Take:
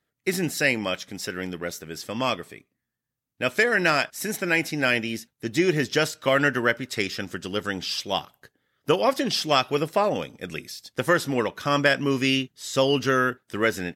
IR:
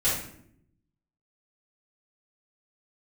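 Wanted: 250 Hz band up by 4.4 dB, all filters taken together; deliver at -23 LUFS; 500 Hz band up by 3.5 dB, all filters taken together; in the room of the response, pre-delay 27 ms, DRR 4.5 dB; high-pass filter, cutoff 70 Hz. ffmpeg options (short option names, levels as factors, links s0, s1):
-filter_complex "[0:a]highpass=70,equalizer=f=250:t=o:g=4.5,equalizer=f=500:t=o:g=3,asplit=2[s0][s1];[1:a]atrim=start_sample=2205,adelay=27[s2];[s1][s2]afir=irnorm=-1:irlink=0,volume=0.168[s3];[s0][s3]amix=inputs=2:normalize=0,volume=0.794"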